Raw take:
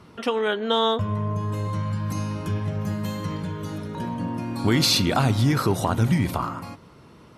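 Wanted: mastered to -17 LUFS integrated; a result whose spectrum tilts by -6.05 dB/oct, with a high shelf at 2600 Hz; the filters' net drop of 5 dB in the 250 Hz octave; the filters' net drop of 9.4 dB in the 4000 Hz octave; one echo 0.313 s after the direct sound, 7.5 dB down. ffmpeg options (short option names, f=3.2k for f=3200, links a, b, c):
-af "equalizer=f=250:t=o:g=-7,highshelf=f=2.6k:g=-4.5,equalizer=f=4k:t=o:g=-7.5,aecho=1:1:313:0.422,volume=10dB"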